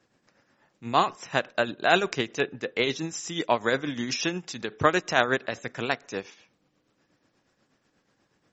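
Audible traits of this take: a quantiser's noise floor 12-bit, dither none; tremolo triangle 8.3 Hz, depth 60%; MP3

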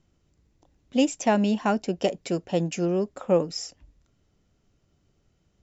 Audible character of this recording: noise floor -70 dBFS; spectral tilt -5.5 dB/octave

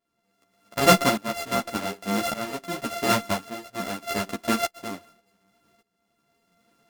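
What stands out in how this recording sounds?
a buzz of ramps at a fixed pitch in blocks of 64 samples; tremolo saw up 0.86 Hz, depth 90%; a shimmering, thickened sound

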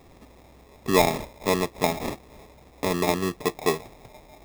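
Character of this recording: aliases and images of a low sample rate 1.5 kHz, jitter 0%

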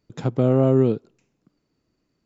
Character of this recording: noise floor -74 dBFS; spectral tilt -7.0 dB/octave

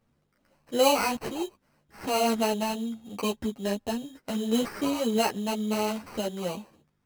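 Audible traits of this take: aliases and images of a low sample rate 3.5 kHz, jitter 0%; a shimmering, thickened sound

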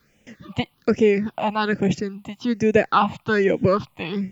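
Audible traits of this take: a quantiser's noise floor 12-bit, dither triangular; phasing stages 6, 1.2 Hz, lowest notch 400–1200 Hz; Vorbis

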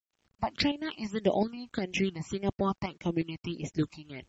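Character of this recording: phasing stages 8, 1.7 Hz, lowest notch 440–1400 Hz; tremolo saw up 2.8 Hz, depth 60%; a quantiser's noise floor 12-bit, dither none; MP3

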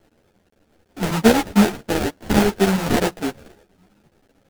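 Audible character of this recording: a quantiser's noise floor 10-bit, dither none; chopped level 9 Hz, depth 65%, duty 85%; aliases and images of a low sample rate 1.1 kHz, jitter 20%; a shimmering, thickened sound

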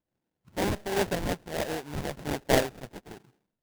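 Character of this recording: phasing stages 8, 1.3 Hz, lowest notch 390–2400 Hz; aliases and images of a low sample rate 1.2 kHz, jitter 20%; random flutter of the level

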